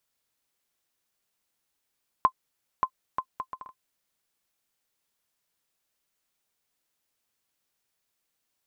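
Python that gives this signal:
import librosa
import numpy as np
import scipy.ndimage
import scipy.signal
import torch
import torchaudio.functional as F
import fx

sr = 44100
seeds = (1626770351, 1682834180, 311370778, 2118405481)

y = fx.bouncing_ball(sr, first_gap_s=0.58, ratio=0.61, hz=1040.0, decay_ms=71.0, level_db=-9.0)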